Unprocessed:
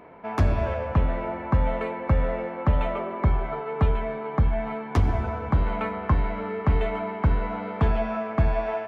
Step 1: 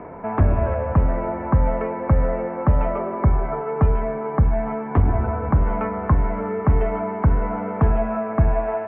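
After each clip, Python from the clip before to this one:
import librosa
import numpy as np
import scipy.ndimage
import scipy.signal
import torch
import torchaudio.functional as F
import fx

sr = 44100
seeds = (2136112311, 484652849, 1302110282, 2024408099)

y = scipy.signal.sosfilt(scipy.signal.bessel(8, 1400.0, 'lowpass', norm='mag', fs=sr, output='sos'), x)
y = fx.band_squash(y, sr, depth_pct=40)
y = F.gain(torch.from_numpy(y), 4.5).numpy()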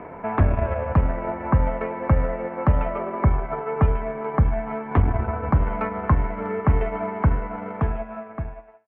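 y = fx.fade_out_tail(x, sr, length_s=1.67)
y = fx.high_shelf(y, sr, hz=2100.0, db=11.0)
y = fx.transient(y, sr, attack_db=1, sustain_db=-8)
y = F.gain(torch.from_numpy(y), -2.0).numpy()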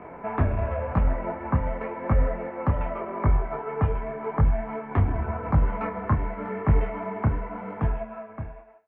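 y = fx.detune_double(x, sr, cents=31)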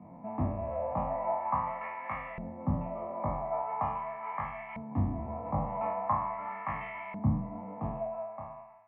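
y = fx.spec_trails(x, sr, decay_s=0.79)
y = fx.fixed_phaser(y, sr, hz=1500.0, stages=6)
y = fx.filter_lfo_bandpass(y, sr, shape='saw_up', hz=0.42, low_hz=200.0, high_hz=2500.0, q=1.5)
y = F.gain(torch.from_numpy(y), 2.0).numpy()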